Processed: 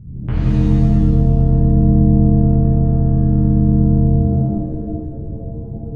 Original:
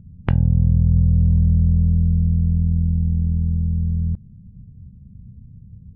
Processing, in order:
low-shelf EQ 190 Hz +7 dB
brickwall limiter −15.5 dBFS, peak gain reduction 13 dB
reverb with rising layers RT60 1.5 s, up +7 semitones, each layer −2 dB, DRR −10.5 dB
level −3.5 dB

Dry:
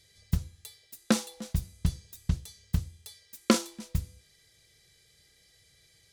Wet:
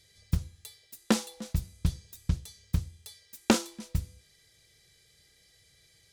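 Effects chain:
highs frequency-modulated by the lows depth 0.42 ms

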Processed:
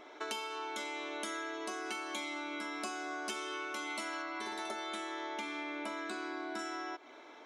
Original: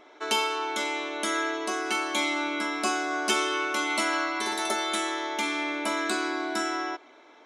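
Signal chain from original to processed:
0:04.22–0:06.59: low-pass filter 3,700 Hz 6 dB per octave
downward compressor 6 to 1, threshold −38 dBFS, peak gain reduction 16 dB

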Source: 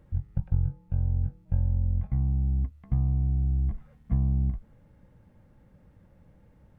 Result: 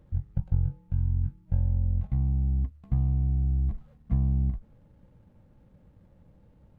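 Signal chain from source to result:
running median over 25 samples
gain on a spectral selection 0:00.92–0:01.48, 390–830 Hz −14 dB

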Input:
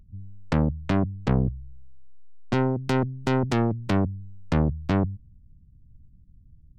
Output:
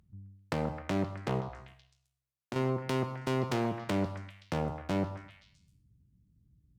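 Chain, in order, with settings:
asymmetric clip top −23 dBFS, bottom −15 dBFS
high-pass filter 71 Hz
low-shelf EQ 310 Hz −7.5 dB
reverb whose tail is shaped and stops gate 280 ms falling, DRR 10 dB
0:01.40–0:02.56: downward compressor, threshold −34 dBFS, peak gain reduction 8 dB
echo through a band-pass that steps 131 ms, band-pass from 960 Hz, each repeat 0.7 octaves, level −6 dB
level −2 dB

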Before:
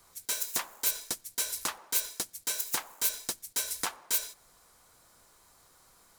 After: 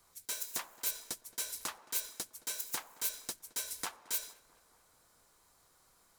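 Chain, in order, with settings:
tape delay 220 ms, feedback 73%, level −17.5 dB, low-pass 1,800 Hz
level −6.5 dB

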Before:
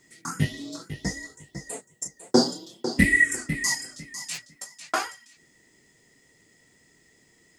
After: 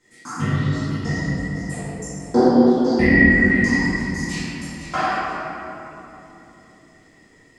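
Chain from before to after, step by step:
treble cut that deepens with the level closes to 1,900 Hz, closed at −19 dBFS
high-shelf EQ 5,600 Hz −6.5 dB
convolution reverb RT60 3.3 s, pre-delay 4 ms, DRR −13.5 dB
level −5 dB

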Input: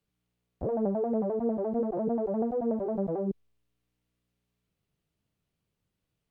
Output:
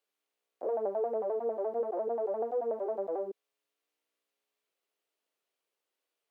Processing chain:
high-pass filter 410 Hz 24 dB per octave

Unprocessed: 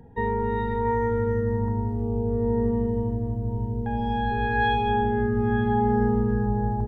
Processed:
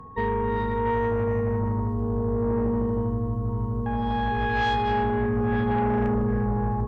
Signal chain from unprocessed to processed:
steady tone 1,100 Hz −44 dBFS
harmonic generator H 5 −15 dB, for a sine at −10.5 dBFS
level −4 dB

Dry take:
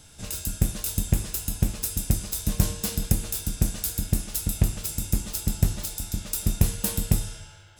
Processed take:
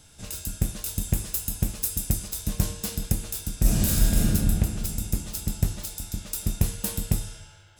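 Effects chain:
0:01.01–0:02.28: high-shelf EQ 9,000 Hz +6.5 dB
0:03.61–0:04.20: thrown reverb, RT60 2.7 s, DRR −9.5 dB
level −2.5 dB

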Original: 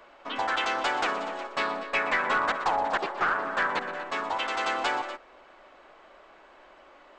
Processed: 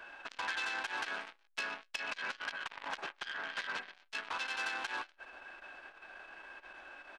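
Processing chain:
formants moved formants +3 semitones
hollow resonant body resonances 1,600/2,600 Hz, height 16 dB, ringing for 40 ms
downward compressor 5 to 1, threshold −31 dBFS, peak gain reduction 15 dB
on a send: single-tap delay 133 ms −22 dB
on the sum: saturating transformer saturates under 3,900 Hz
level −1.5 dB

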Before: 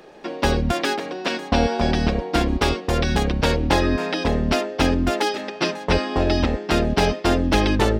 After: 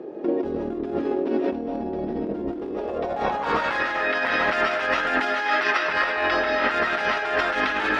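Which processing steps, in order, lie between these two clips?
convolution reverb RT60 0.85 s, pre-delay 110 ms, DRR −2 dB
in parallel at −1.5 dB: output level in coarse steps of 10 dB
on the sum: band-pass filter sweep 340 Hz → 1,600 Hz, 0:02.60–0:03.79
gain into a clipping stage and back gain 12 dB
compressor whose output falls as the input rises −30 dBFS, ratio −1
level +5 dB

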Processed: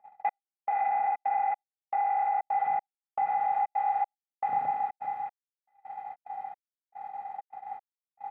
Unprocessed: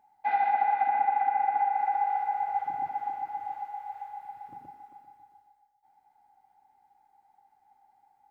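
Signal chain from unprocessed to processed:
compressor on every frequency bin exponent 0.6
three-way crossover with the lows and the highs turned down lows −15 dB, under 160 Hz, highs −15 dB, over 2,200 Hz
notch filter 1,500 Hz, Q 21
on a send: delay with a high-pass on its return 582 ms, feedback 66%, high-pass 1,500 Hz, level −14.5 dB
on the sum: brickwall limiter −24.5 dBFS, peak gain reduction 10.5 dB
speech leveller within 4 dB 0.5 s
gate pattern "xxx....xxxxx." 156 BPM −60 dB
noise gate −43 dBFS, range −25 dB
comb filter 1.6 ms, depth 81%
level +3.5 dB

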